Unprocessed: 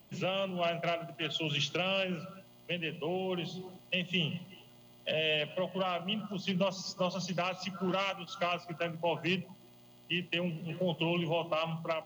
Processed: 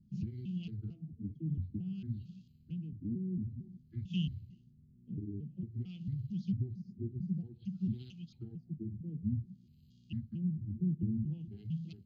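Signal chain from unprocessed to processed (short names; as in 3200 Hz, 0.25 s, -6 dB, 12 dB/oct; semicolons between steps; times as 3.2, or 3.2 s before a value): trilling pitch shifter -7.5 st, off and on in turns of 0.225 s; elliptic band-stop 210–5000 Hz, stop band 50 dB; LFO low-pass sine 0.53 Hz 360–3000 Hz; gain +2.5 dB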